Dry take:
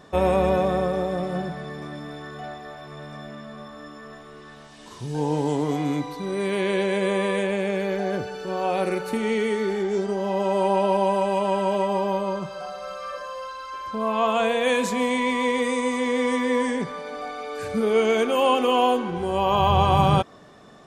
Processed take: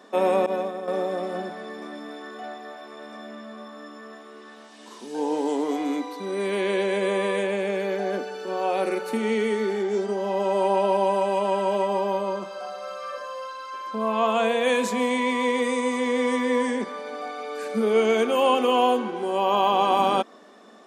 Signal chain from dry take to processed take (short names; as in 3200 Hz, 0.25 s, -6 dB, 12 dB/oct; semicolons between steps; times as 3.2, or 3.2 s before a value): elliptic high-pass 210 Hz, stop band 40 dB; 0.46–0.88 expander -16 dBFS